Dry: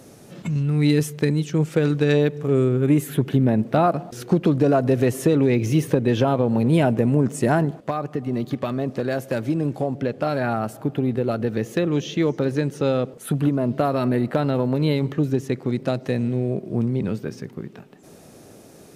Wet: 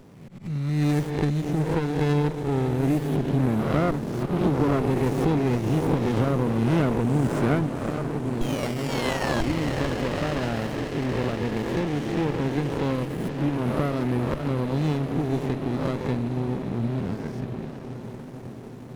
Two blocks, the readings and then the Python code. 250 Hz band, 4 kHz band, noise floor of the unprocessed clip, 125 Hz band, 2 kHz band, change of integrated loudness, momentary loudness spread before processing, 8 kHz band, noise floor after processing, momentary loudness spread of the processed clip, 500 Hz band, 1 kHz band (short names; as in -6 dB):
-3.5 dB, -1.0 dB, -46 dBFS, -2.5 dB, -1.0 dB, -3.5 dB, 8 LU, -5.0 dB, -39 dBFS, 7 LU, -5.0 dB, -2.5 dB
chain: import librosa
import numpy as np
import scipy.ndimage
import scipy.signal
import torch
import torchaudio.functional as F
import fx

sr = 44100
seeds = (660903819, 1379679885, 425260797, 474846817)

y = fx.spec_swells(x, sr, rise_s=1.0)
y = fx.auto_swell(y, sr, attack_ms=121.0)
y = fx.spec_paint(y, sr, seeds[0], shape='fall', start_s=8.41, length_s=1.0, low_hz=1600.0, high_hz=3300.0, level_db=-11.0)
y = fx.echo_diffused(y, sr, ms=542, feedback_pct=75, wet_db=-10.5)
y = fx.running_max(y, sr, window=33)
y = y * librosa.db_to_amplitude(-6.0)